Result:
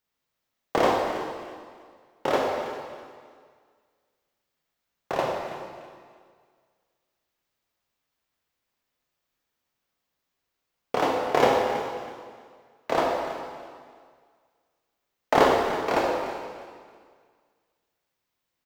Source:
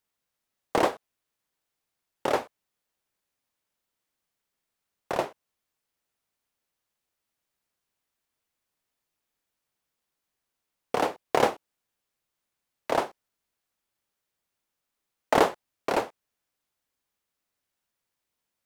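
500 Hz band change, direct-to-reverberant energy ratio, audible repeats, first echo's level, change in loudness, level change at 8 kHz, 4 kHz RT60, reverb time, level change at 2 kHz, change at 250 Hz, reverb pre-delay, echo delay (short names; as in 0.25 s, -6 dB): +4.5 dB, -1.5 dB, 2, -13.5 dB, +2.0 dB, 0.0 dB, 1.8 s, 1.9 s, +3.5 dB, +3.5 dB, 7 ms, 0.325 s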